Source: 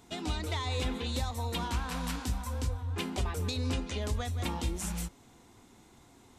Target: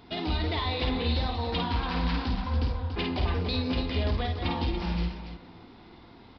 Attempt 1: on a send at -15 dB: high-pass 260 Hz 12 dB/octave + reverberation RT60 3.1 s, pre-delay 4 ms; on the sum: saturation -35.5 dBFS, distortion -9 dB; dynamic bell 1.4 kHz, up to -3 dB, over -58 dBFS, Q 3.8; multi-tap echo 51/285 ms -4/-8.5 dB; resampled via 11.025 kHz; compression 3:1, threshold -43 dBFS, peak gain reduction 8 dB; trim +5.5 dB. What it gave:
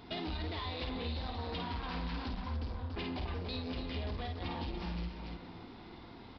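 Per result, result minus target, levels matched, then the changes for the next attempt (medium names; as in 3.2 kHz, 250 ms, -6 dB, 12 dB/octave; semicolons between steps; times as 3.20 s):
compression: peak gain reduction +8 dB; saturation: distortion +8 dB
remove: compression 3:1, threshold -43 dBFS, peak gain reduction 8 dB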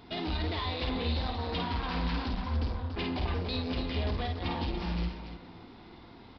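saturation: distortion +8 dB
change: saturation -27.5 dBFS, distortion -16 dB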